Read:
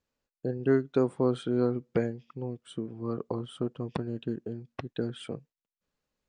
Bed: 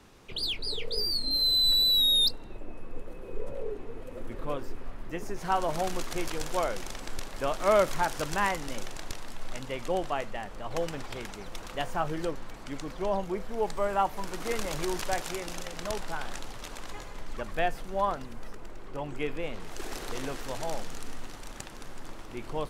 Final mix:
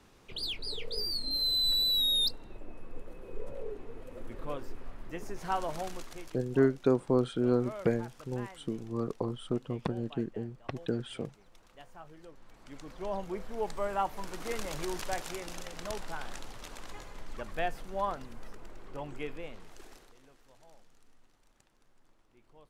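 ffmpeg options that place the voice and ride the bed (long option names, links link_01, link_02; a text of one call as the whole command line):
ffmpeg -i stem1.wav -i stem2.wav -filter_complex "[0:a]adelay=5900,volume=-0.5dB[link_01];[1:a]volume=11dB,afade=type=out:start_time=5.54:duration=0.87:silence=0.16788,afade=type=in:start_time=12.29:duration=1.08:silence=0.16788,afade=type=out:start_time=19.01:duration=1.13:silence=0.0891251[link_02];[link_01][link_02]amix=inputs=2:normalize=0" out.wav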